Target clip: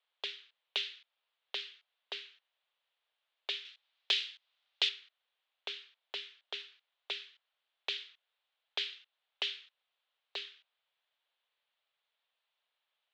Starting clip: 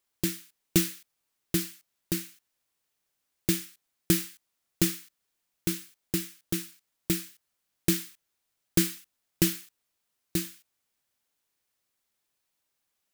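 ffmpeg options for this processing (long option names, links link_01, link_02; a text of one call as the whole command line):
ffmpeg -i in.wav -filter_complex "[0:a]acrossover=split=2100[link_01][link_02];[link_01]acompressor=threshold=-37dB:ratio=10[link_03];[link_02]aexciter=amount=2.5:drive=3.3:freq=2800[link_04];[link_03][link_04]amix=inputs=2:normalize=0,highpass=frequency=440:width_type=q:width=0.5412,highpass=frequency=440:width_type=q:width=1.307,lowpass=frequency=3600:width_type=q:width=0.5176,lowpass=frequency=3600:width_type=q:width=0.7071,lowpass=frequency=3600:width_type=q:width=1.932,afreqshift=74,asettb=1/sr,asplit=3[link_05][link_06][link_07];[link_05]atrim=end=3.654[link_08];[link_06]atrim=start=3.65:end=4.89,asetpts=PTS-STARTPTS,afade=type=in:duration=0.004:curve=qsin,afade=type=out:start_time=1.236:duration=0.004:curve=qsin,highshelf=frequency=2300:gain=9.5[link_09];[link_07]atrim=start=4.886[link_10];[link_08][link_09]acrossfade=duration=0.004:curve1=hsin:curve2=qsin[link_11];[link_11][link_10]acrossfade=duration=0.004:curve1=qsin:curve2=hsin" out.wav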